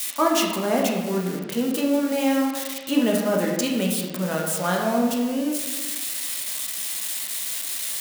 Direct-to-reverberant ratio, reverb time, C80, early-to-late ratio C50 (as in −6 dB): −1.5 dB, 1.3 s, 4.5 dB, 2.5 dB